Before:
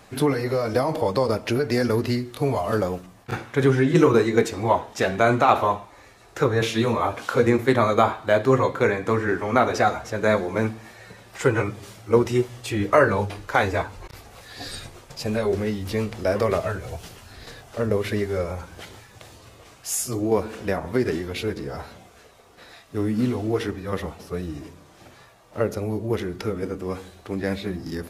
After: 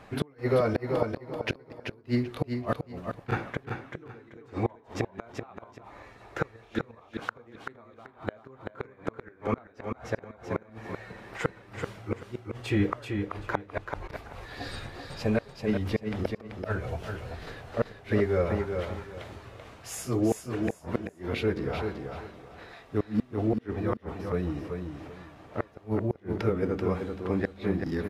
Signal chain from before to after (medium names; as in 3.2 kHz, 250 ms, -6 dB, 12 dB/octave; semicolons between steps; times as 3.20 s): tone controls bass 0 dB, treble -14 dB; inverted gate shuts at -14 dBFS, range -34 dB; on a send: feedback delay 385 ms, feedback 24%, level -6 dB